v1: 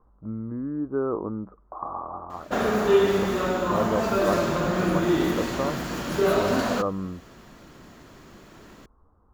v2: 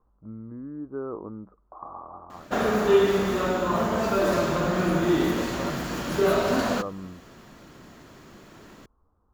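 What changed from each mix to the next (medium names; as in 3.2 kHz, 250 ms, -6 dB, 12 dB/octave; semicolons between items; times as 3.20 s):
speech -7.0 dB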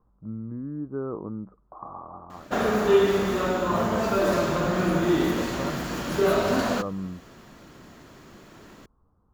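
speech: add peaking EQ 150 Hz +9 dB 1.2 oct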